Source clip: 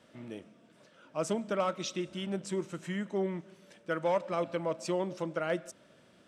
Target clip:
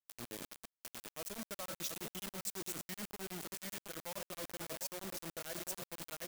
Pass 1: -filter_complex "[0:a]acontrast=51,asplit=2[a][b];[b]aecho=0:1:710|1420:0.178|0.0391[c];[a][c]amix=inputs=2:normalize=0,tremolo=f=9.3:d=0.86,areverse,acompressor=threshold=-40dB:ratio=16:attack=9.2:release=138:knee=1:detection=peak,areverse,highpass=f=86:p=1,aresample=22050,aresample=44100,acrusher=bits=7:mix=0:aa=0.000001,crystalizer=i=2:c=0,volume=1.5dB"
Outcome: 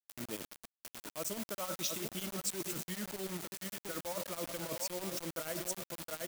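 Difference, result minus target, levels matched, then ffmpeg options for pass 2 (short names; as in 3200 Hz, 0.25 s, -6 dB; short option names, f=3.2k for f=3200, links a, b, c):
compressor: peak gain reduction -6.5 dB
-filter_complex "[0:a]acontrast=51,asplit=2[a][b];[b]aecho=0:1:710|1420:0.178|0.0391[c];[a][c]amix=inputs=2:normalize=0,tremolo=f=9.3:d=0.86,areverse,acompressor=threshold=-47dB:ratio=16:attack=9.2:release=138:knee=1:detection=peak,areverse,highpass=f=86:p=1,aresample=22050,aresample=44100,acrusher=bits=7:mix=0:aa=0.000001,crystalizer=i=2:c=0,volume=1.5dB"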